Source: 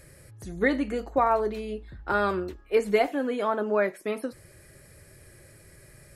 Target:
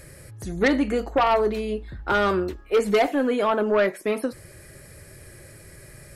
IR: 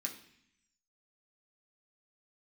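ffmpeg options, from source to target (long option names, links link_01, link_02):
-af "aeval=exprs='0.316*(cos(1*acos(clip(val(0)/0.316,-1,1)))-cos(1*PI/2))+0.0708*(cos(5*acos(clip(val(0)/0.316,-1,1)))-cos(5*PI/2))':channel_layout=same"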